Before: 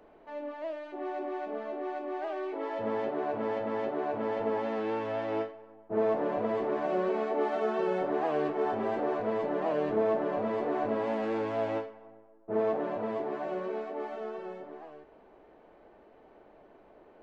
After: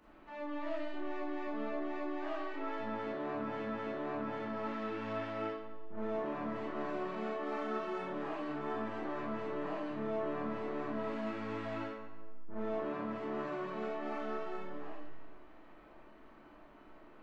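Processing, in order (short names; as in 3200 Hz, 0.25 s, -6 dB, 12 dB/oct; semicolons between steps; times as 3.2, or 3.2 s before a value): band shelf 550 Hz -11 dB 1.2 oct; reverse; compressor, threshold -41 dBFS, peak gain reduction 11 dB; reverse; resonator 73 Hz, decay 1.2 s, harmonics all, mix 70%; reverb RT60 0.50 s, pre-delay 4 ms, DRR -6 dB; gain +6 dB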